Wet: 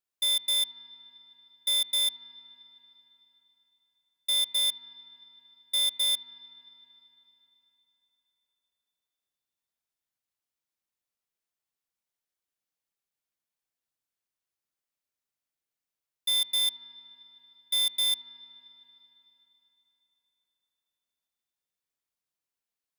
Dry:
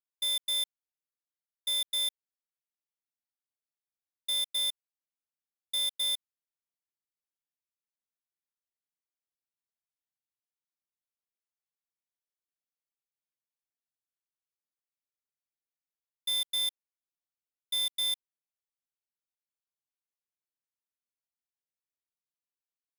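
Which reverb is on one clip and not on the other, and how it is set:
spring reverb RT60 3.7 s, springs 44/52 ms, chirp 80 ms, DRR 14 dB
level +4 dB

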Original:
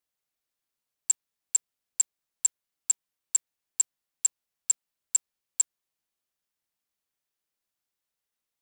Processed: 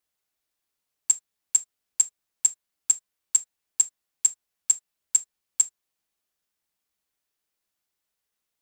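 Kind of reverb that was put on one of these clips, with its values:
reverb whose tail is shaped and stops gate 90 ms falling, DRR 10.5 dB
level +3.5 dB

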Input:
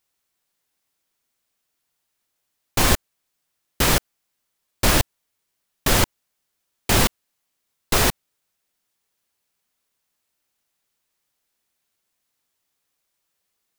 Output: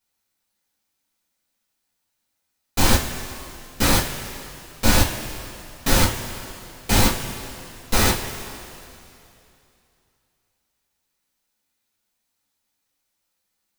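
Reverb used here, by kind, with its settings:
coupled-rooms reverb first 0.26 s, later 2.8 s, from −17 dB, DRR −6.5 dB
level −7.5 dB

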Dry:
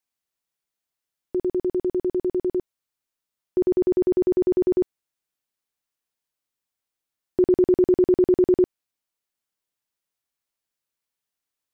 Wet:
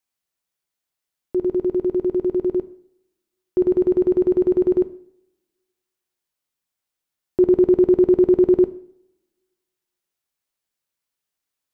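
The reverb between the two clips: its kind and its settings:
coupled-rooms reverb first 0.57 s, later 1.5 s, from −23 dB, DRR 11 dB
level +1.5 dB

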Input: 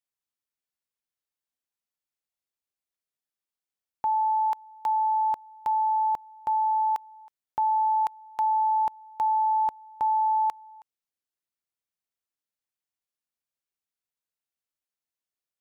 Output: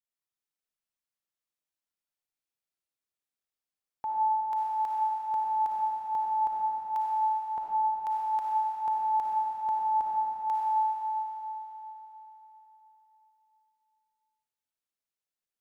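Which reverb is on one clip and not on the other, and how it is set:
comb and all-pass reverb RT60 3.9 s, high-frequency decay 0.95×, pre-delay 15 ms, DRR −4.5 dB
level −7.5 dB

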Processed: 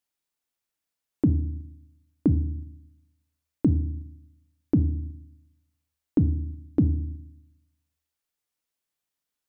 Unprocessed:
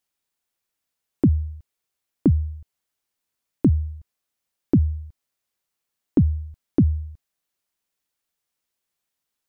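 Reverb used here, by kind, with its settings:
feedback delay network reverb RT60 0.64 s, low-frequency decay 1.55×, high-frequency decay 0.85×, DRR 11.5 dB
level −4.5 dB

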